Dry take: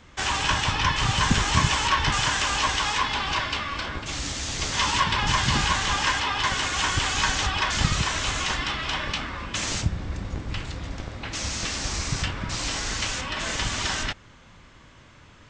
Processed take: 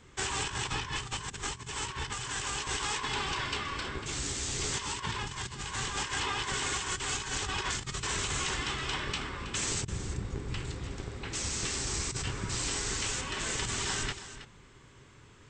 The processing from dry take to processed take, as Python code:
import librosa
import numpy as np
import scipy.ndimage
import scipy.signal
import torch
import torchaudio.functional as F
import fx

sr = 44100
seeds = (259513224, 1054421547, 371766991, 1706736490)

p1 = fx.graphic_eq_31(x, sr, hz=(125, 400, 630, 8000), db=(7, 11, -6, 12))
p2 = p1 + fx.echo_single(p1, sr, ms=322, db=-13.0, dry=0)
p3 = fx.over_compress(p2, sr, threshold_db=-25.0, ratio=-0.5)
y = p3 * 10.0 ** (-8.5 / 20.0)